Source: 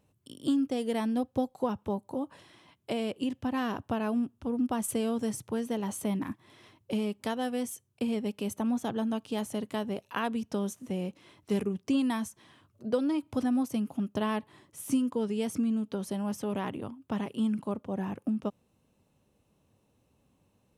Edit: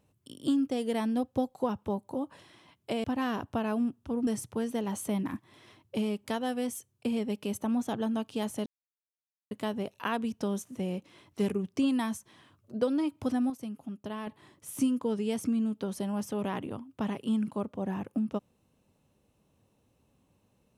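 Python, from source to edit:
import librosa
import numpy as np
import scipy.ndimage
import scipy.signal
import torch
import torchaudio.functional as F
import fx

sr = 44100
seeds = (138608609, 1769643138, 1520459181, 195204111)

y = fx.edit(x, sr, fx.cut(start_s=3.04, length_s=0.36),
    fx.cut(start_s=4.63, length_s=0.6),
    fx.insert_silence(at_s=9.62, length_s=0.85),
    fx.fade_down_up(start_s=13.12, length_s=1.75, db=-8.0, fade_s=0.49, curve='log'), tone=tone)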